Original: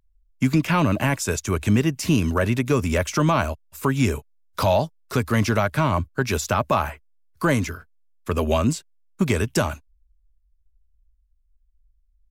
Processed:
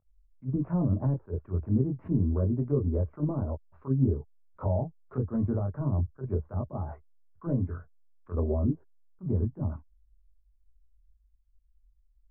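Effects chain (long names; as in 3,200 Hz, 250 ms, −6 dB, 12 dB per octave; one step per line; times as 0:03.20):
multi-voice chorus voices 4, 0.3 Hz, delay 22 ms, depth 1.5 ms
treble cut that deepens with the level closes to 390 Hz, closed at −20 dBFS
low-pass filter 1,300 Hz 24 dB per octave
level that may rise only so fast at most 350 dB per second
level −2 dB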